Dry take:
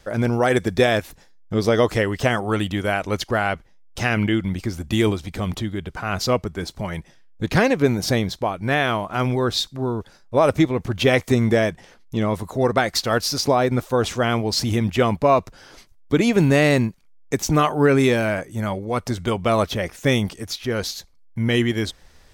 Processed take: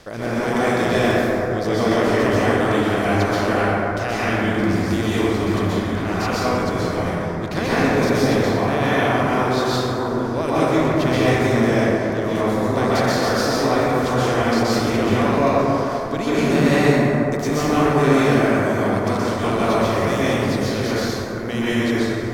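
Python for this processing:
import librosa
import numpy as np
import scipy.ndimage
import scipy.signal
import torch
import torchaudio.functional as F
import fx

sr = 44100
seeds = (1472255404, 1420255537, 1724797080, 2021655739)

y = fx.bin_compress(x, sr, power=0.6)
y = fx.rev_plate(y, sr, seeds[0], rt60_s=3.4, hf_ratio=0.3, predelay_ms=110, drr_db=-10.0)
y = F.gain(torch.from_numpy(y), -12.5).numpy()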